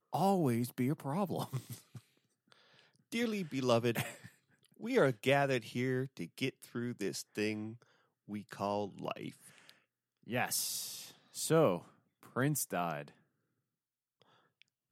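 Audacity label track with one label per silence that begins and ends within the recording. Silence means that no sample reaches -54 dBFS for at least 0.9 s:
13.130000	14.220000	silence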